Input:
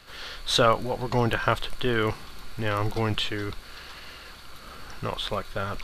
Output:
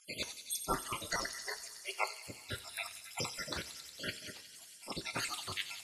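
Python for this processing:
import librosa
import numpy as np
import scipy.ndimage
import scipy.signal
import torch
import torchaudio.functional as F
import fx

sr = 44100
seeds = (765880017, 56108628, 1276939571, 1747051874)

y = fx.spec_dropout(x, sr, seeds[0], share_pct=71)
y = fx.cheby1_highpass(y, sr, hz=420.0, order=10, at=(1.22, 2.28), fade=0.02)
y = fx.spec_gate(y, sr, threshold_db=-20, keep='weak')
y = scipy.signal.sosfilt(scipy.signal.cheby1(3, 1.0, 11000.0, 'lowpass', fs=sr, output='sos'), y)
y = fx.echo_wet_highpass(y, sr, ms=91, feedback_pct=83, hz=3800.0, wet_db=-7.5)
y = fx.rev_double_slope(y, sr, seeds[1], early_s=0.3, late_s=2.8, knee_db=-18, drr_db=9.5)
y = y * 10.0 ** (11.5 / 20.0)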